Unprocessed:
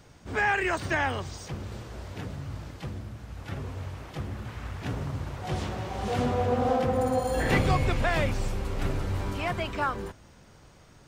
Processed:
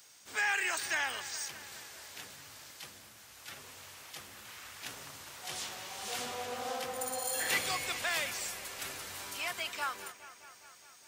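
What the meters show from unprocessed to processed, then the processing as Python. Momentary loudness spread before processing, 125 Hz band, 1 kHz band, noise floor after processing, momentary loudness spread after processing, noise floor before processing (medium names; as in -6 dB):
14 LU, -28.0 dB, -9.5 dB, -57 dBFS, 18 LU, -54 dBFS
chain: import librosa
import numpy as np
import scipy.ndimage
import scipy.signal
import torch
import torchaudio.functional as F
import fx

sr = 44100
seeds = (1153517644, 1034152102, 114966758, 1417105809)

p1 = np.diff(x, prepend=0.0)
p2 = p1 + fx.echo_bbd(p1, sr, ms=206, stages=4096, feedback_pct=71, wet_db=-14.5, dry=0)
y = F.gain(torch.from_numpy(p2), 8.0).numpy()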